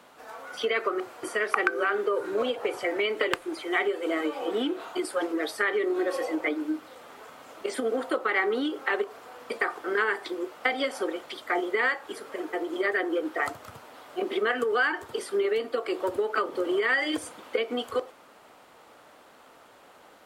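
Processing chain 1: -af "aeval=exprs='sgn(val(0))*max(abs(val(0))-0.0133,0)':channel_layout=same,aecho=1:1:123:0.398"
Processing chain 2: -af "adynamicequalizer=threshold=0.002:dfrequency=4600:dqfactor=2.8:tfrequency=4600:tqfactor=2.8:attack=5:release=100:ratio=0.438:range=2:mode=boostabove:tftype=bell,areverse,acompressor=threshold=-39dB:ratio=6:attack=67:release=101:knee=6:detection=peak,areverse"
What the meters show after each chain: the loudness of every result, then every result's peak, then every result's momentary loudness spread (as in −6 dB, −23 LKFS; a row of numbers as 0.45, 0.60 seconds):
−29.5, −37.5 LKFS; −6.5, −13.0 dBFS; 9, 12 LU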